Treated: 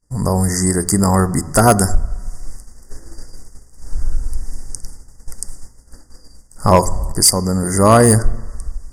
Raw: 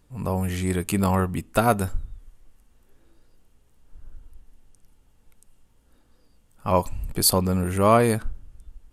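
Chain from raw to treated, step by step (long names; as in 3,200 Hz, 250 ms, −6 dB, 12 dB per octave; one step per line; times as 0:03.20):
flat-topped bell 6,000 Hz +11.5 dB
downward expander −46 dBFS
automatic gain control gain up to 13 dB
low-shelf EQ 76 Hz +4.5 dB
on a send at −17 dB: convolution reverb RT60 1.0 s, pre-delay 3 ms
on the sum: pitch-shifted copies added −12 semitones −16 dB
linear-phase brick-wall band-stop 2,100–4,600 Hz
gain into a clipping stage and back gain 7.5 dB
downward compressor 1.5 to 1, threshold −34 dBFS, peak gain reduction 8.5 dB
boost into a limiter +14 dB
level −1 dB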